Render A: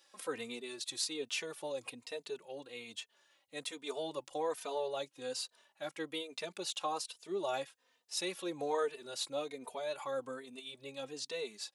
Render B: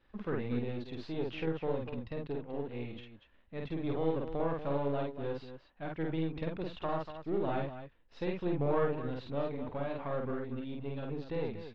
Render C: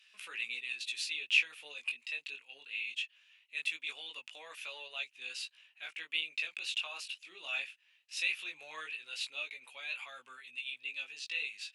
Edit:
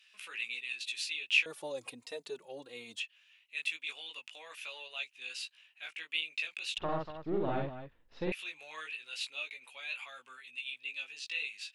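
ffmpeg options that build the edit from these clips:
ffmpeg -i take0.wav -i take1.wav -i take2.wav -filter_complex "[2:a]asplit=3[link_01][link_02][link_03];[link_01]atrim=end=1.462[link_04];[0:a]atrim=start=1.458:end=3.002[link_05];[link_02]atrim=start=2.998:end=6.782[link_06];[1:a]atrim=start=6.778:end=8.322[link_07];[link_03]atrim=start=8.318[link_08];[link_04][link_05]acrossfade=duration=0.004:curve1=hsin:curve2=hsin[link_09];[link_09][link_06]acrossfade=duration=0.004:curve1=hsin:curve2=hsin[link_10];[link_10][link_07]acrossfade=duration=0.004:curve1=hsin:curve2=hsin[link_11];[link_11][link_08]acrossfade=duration=0.004:curve1=hsin:curve2=hsin" out.wav

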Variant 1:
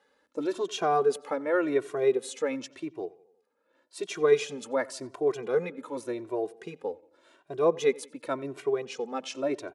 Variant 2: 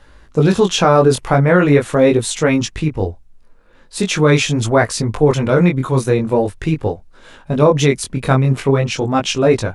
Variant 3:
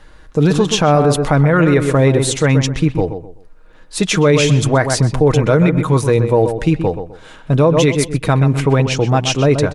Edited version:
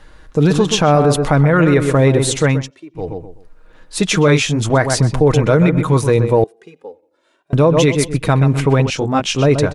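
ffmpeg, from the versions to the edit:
ffmpeg -i take0.wav -i take1.wav -i take2.wav -filter_complex "[0:a]asplit=2[link_01][link_02];[1:a]asplit=2[link_03][link_04];[2:a]asplit=5[link_05][link_06][link_07][link_08][link_09];[link_05]atrim=end=2.71[link_10];[link_01]atrim=start=2.47:end=3.17[link_11];[link_06]atrim=start=2.93:end=4.282[link_12];[link_03]atrim=start=4.278:end=4.702[link_13];[link_07]atrim=start=4.698:end=6.442[link_14];[link_02]atrim=start=6.438:end=7.532[link_15];[link_08]atrim=start=7.528:end=8.902[link_16];[link_04]atrim=start=8.898:end=9.362[link_17];[link_09]atrim=start=9.358[link_18];[link_10][link_11]acrossfade=duration=0.24:curve1=tri:curve2=tri[link_19];[link_19][link_12]acrossfade=duration=0.24:curve1=tri:curve2=tri[link_20];[link_20][link_13]acrossfade=duration=0.004:curve1=hsin:curve2=hsin[link_21];[link_21][link_14]acrossfade=duration=0.004:curve1=hsin:curve2=hsin[link_22];[link_22][link_15]acrossfade=duration=0.004:curve1=hsin:curve2=hsin[link_23];[link_23][link_16]acrossfade=duration=0.004:curve1=hsin:curve2=hsin[link_24];[link_24][link_17]acrossfade=duration=0.004:curve1=hsin:curve2=hsin[link_25];[link_25][link_18]acrossfade=duration=0.004:curve1=hsin:curve2=hsin" out.wav

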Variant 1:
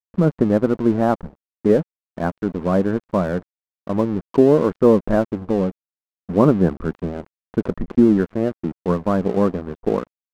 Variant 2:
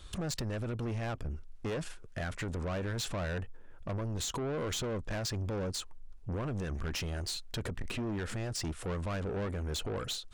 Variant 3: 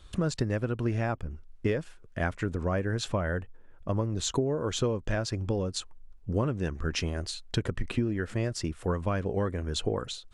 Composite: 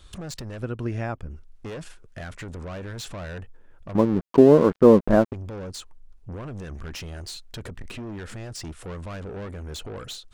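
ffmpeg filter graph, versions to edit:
ffmpeg -i take0.wav -i take1.wav -i take2.wav -filter_complex "[1:a]asplit=3[link_01][link_02][link_03];[link_01]atrim=end=0.632[link_04];[2:a]atrim=start=0.628:end=1.302[link_05];[link_02]atrim=start=1.298:end=3.952[link_06];[0:a]atrim=start=3.948:end=5.332[link_07];[link_03]atrim=start=5.328[link_08];[link_04][link_05]acrossfade=duration=0.004:curve1=hsin:curve2=hsin[link_09];[link_09][link_06]acrossfade=duration=0.004:curve1=hsin:curve2=hsin[link_10];[link_10][link_07]acrossfade=duration=0.004:curve1=hsin:curve2=hsin[link_11];[link_11][link_08]acrossfade=duration=0.004:curve1=hsin:curve2=hsin" out.wav

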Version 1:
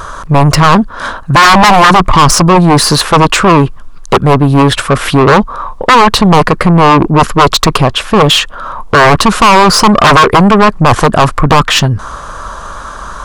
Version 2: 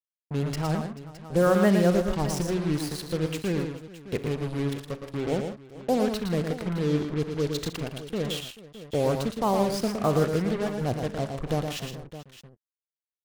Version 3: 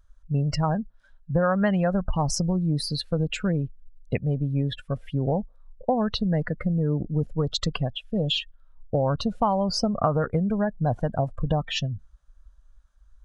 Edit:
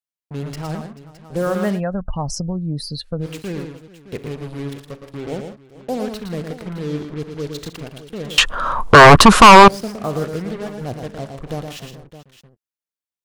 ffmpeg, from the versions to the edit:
ffmpeg -i take0.wav -i take1.wav -i take2.wav -filter_complex "[1:a]asplit=3[link_01][link_02][link_03];[link_01]atrim=end=1.81[link_04];[2:a]atrim=start=1.71:end=3.29[link_05];[link_02]atrim=start=3.19:end=8.382[link_06];[0:a]atrim=start=8.378:end=9.682[link_07];[link_03]atrim=start=9.678[link_08];[link_04][link_05]acrossfade=duration=0.1:curve1=tri:curve2=tri[link_09];[link_09][link_06]acrossfade=duration=0.1:curve1=tri:curve2=tri[link_10];[link_10][link_07]acrossfade=duration=0.004:curve1=hsin:curve2=hsin[link_11];[link_11][link_08]acrossfade=duration=0.004:curve1=hsin:curve2=hsin" out.wav

